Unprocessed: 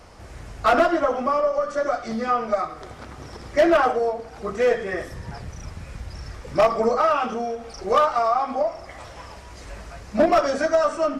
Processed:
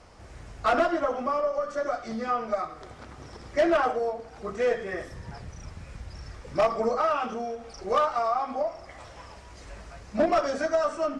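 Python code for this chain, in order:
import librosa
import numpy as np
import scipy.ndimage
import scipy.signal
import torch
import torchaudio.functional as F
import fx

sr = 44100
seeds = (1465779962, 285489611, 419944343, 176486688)

y = scipy.signal.sosfilt(scipy.signal.butter(4, 10000.0, 'lowpass', fs=sr, output='sos'), x)
y = y * 10.0 ** (-5.5 / 20.0)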